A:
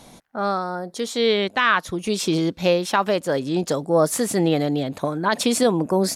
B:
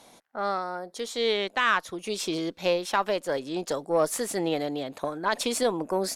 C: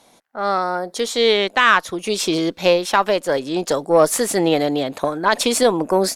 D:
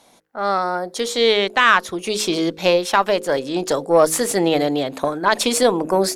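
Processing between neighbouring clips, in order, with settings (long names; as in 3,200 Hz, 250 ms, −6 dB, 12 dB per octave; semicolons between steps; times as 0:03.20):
bass and treble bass −13 dB, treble −1 dB; harmonic generator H 6 −30 dB, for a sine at −5 dBFS; level −5 dB
automatic gain control gain up to 13 dB
hum removal 52.94 Hz, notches 10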